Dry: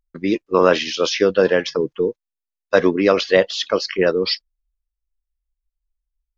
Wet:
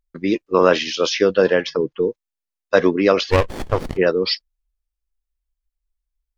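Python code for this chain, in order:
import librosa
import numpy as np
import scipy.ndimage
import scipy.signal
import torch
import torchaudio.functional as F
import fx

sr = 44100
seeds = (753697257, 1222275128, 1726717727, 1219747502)

y = fx.lowpass(x, sr, hz=5300.0, slope=12, at=(1.54, 2.03))
y = fx.running_max(y, sr, window=33, at=(3.3, 3.96), fade=0.02)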